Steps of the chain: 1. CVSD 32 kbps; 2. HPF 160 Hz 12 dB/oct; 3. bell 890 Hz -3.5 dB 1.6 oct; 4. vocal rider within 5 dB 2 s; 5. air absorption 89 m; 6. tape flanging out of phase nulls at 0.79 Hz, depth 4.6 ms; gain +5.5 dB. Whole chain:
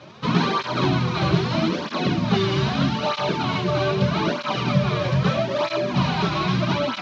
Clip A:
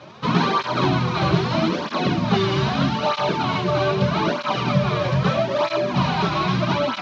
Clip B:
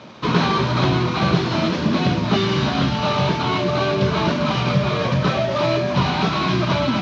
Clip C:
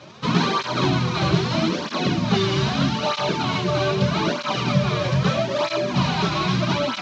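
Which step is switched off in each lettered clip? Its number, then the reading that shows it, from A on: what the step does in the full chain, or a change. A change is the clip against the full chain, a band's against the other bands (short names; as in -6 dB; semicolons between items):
3, 1 kHz band +2.5 dB; 6, loudness change +2.5 LU; 5, 4 kHz band +2.0 dB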